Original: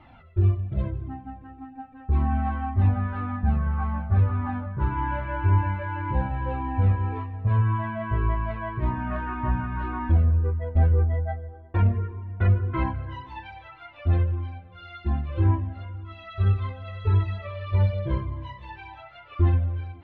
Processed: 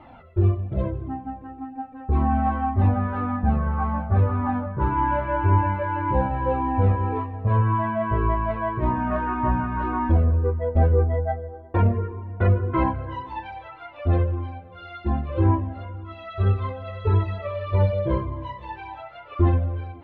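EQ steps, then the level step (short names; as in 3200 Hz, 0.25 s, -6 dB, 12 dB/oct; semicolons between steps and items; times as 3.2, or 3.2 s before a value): graphic EQ 250/500/1000 Hz +4/+9/+5 dB; 0.0 dB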